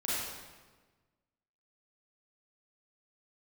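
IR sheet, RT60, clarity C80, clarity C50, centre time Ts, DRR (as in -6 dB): 1.4 s, -0.5 dB, -4.0 dB, 0.11 s, -9.0 dB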